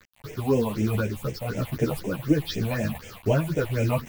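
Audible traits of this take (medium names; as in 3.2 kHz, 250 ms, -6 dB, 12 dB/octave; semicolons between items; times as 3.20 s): a quantiser's noise floor 6-bit, dither none; phasing stages 6, 4 Hz, lowest notch 350–1200 Hz; tremolo saw up 1 Hz, depth 40%; a shimmering, thickened sound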